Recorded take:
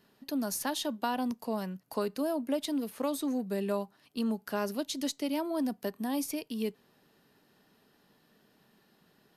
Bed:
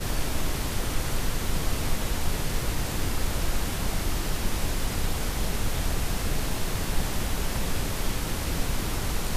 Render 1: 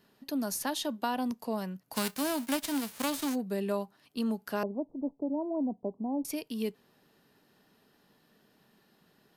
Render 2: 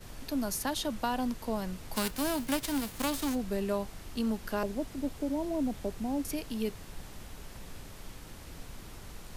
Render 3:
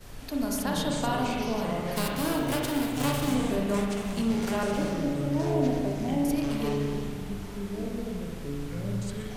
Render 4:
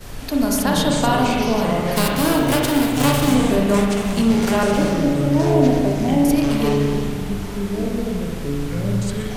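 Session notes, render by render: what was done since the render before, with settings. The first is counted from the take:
1.94–3.34 spectral whitening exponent 0.3; 4.63–6.25 steep low-pass 920 Hz 48 dB/oct
add bed -18 dB
echoes that change speed 0.18 s, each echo -6 st, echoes 2, each echo -6 dB; spring tank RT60 1.8 s, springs 35/42 ms, chirp 25 ms, DRR -1.5 dB
gain +10.5 dB

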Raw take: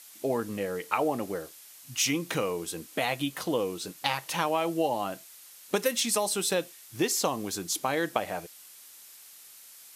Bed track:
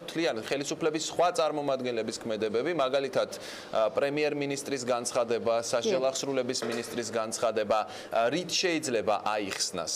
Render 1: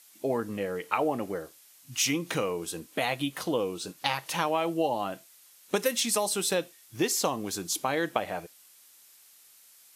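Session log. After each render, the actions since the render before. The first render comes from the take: noise print and reduce 6 dB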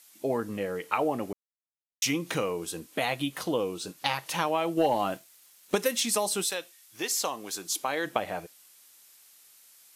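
1.33–2.02 mute; 4.77–5.75 sample leveller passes 1; 6.43–8.05 HPF 1400 Hz -> 410 Hz 6 dB/oct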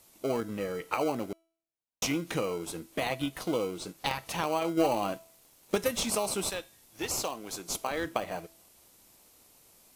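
in parallel at -7 dB: sample-and-hold 25×; on the sum: resonator 330 Hz, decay 0.53 s, mix 40%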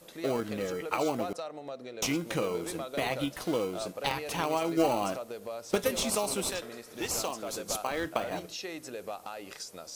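add bed track -12 dB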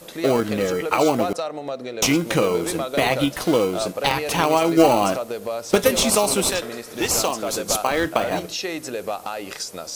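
gain +11.5 dB; limiter -3 dBFS, peak gain reduction 2 dB

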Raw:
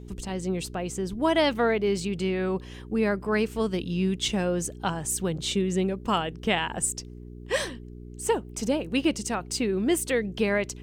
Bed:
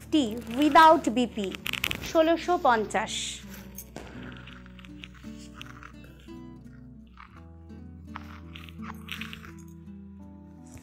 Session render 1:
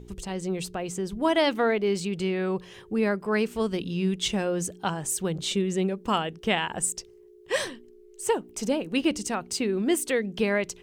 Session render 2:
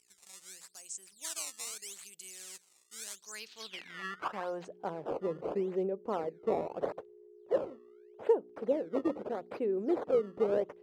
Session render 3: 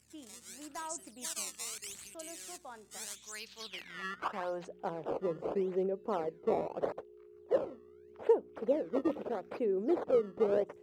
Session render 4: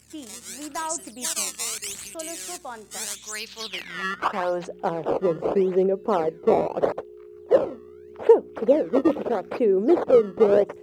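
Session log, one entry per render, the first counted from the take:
de-hum 60 Hz, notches 5
decimation with a swept rate 16×, swing 160% 0.8 Hz; band-pass sweep 7900 Hz -> 490 Hz, 3.13–4.86
add bed -27 dB
gain +12 dB

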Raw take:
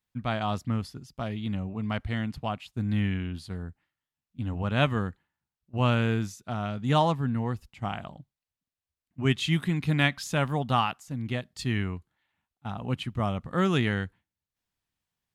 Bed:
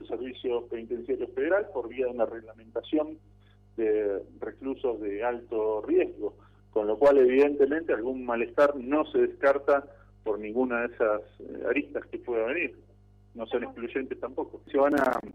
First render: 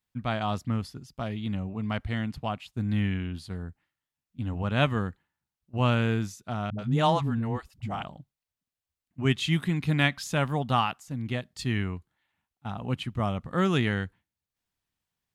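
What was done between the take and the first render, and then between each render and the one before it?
6.7–8.03 dispersion highs, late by 85 ms, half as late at 310 Hz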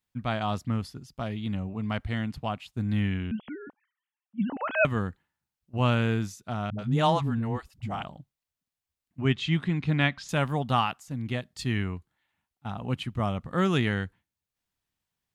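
3.31–4.85 sine-wave speech; 9.21–10.29 air absorption 110 m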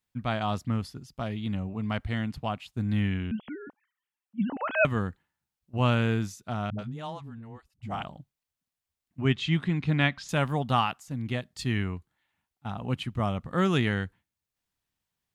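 6.8–7.93 dip -14.5 dB, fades 0.13 s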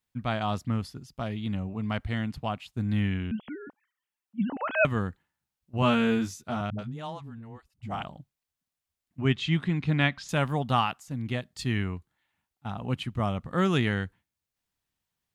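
5.81–6.61 doubler 13 ms -2 dB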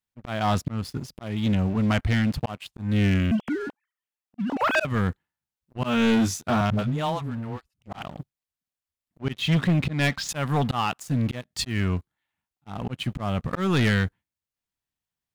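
auto swell 0.305 s; sample leveller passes 3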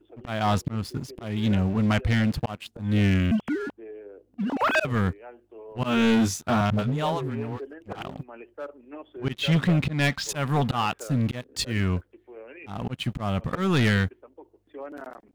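add bed -15.5 dB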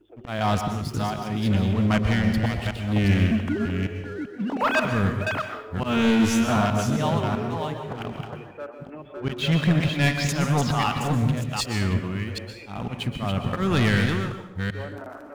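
reverse delay 0.387 s, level -4.5 dB; plate-style reverb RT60 0.71 s, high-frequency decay 0.85×, pre-delay 0.11 s, DRR 6.5 dB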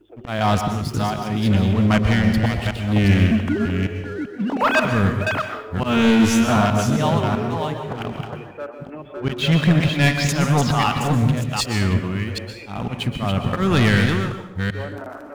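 gain +4.5 dB

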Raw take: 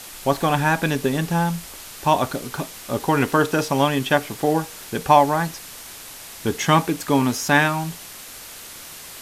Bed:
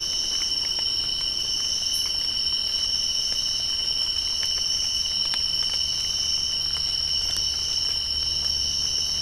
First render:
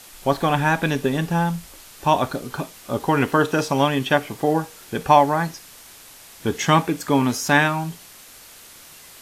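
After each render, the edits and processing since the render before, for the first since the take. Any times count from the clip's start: noise print and reduce 6 dB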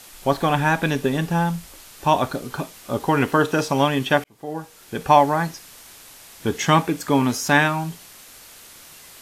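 4.24–5.16 fade in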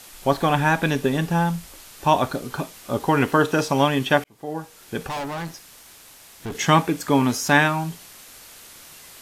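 5.07–6.55 tube stage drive 27 dB, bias 0.55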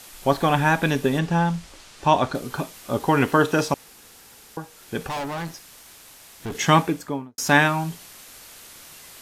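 1.19–2.35 LPF 7100 Hz; 3.74–4.57 room tone; 6.78–7.38 studio fade out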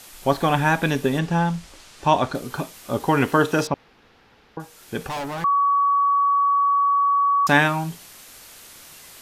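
3.67–4.6 air absorption 300 m; 5.44–7.47 bleep 1130 Hz -15.5 dBFS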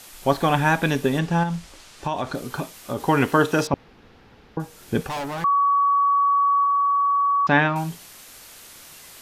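1.43–3.03 compressor, threshold -21 dBFS; 3.73–5.01 low shelf 450 Hz +9 dB; 6.64–7.76 air absorption 230 m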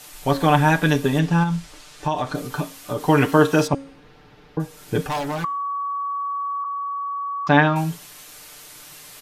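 comb 6.7 ms, depth 73%; de-hum 274.2 Hz, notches 39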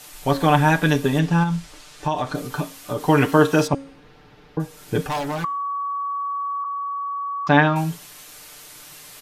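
nothing audible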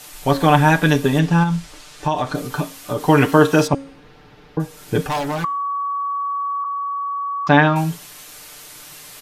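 gain +3 dB; limiter -1 dBFS, peak gain reduction 1.5 dB

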